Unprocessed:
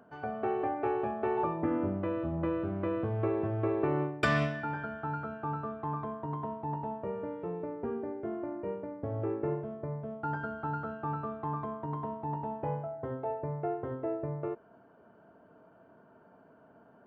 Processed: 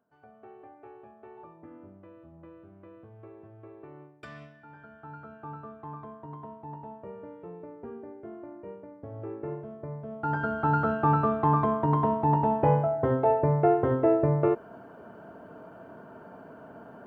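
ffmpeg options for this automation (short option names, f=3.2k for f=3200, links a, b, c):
-af "volume=12dB,afade=t=in:st=4.59:d=0.85:silence=0.251189,afade=t=in:st=9.12:d=0.95:silence=0.501187,afade=t=in:st=10.07:d=0.84:silence=0.251189"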